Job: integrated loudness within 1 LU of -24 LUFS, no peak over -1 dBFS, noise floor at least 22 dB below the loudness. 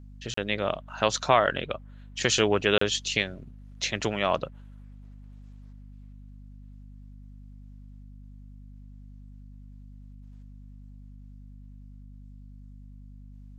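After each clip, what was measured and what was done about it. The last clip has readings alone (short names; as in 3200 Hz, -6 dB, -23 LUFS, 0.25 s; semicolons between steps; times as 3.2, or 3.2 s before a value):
dropouts 2; longest dropout 34 ms; hum 50 Hz; harmonics up to 250 Hz; hum level -44 dBFS; loudness -26.5 LUFS; peak -5.5 dBFS; loudness target -24.0 LUFS
-> interpolate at 0.34/2.78, 34 ms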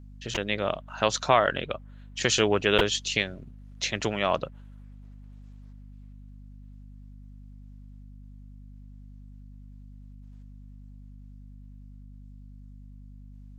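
dropouts 0; hum 50 Hz; harmonics up to 250 Hz; hum level -44 dBFS
-> de-hum 50 Hz, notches 5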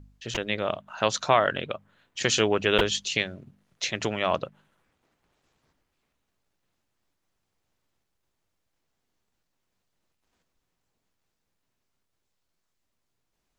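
hum none; loudness -26.0 LUFS; peak -5.5 dBFS; loudness target -24.0 LUFS
-> gain +2 dB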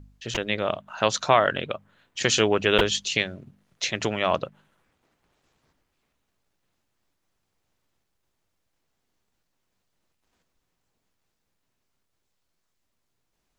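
loudness -24.5 LUFS; peak -3.5 dBFS; noise floor -77 dBFS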